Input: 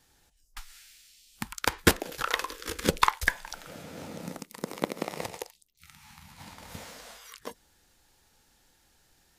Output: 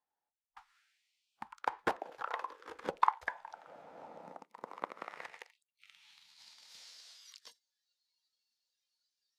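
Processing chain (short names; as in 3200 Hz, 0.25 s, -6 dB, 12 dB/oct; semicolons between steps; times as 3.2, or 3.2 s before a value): spectral noise reduction 15 dB; band-pass sweep 830 Hz -> 4600 Hz, 4.49–6.42; gain -1 dB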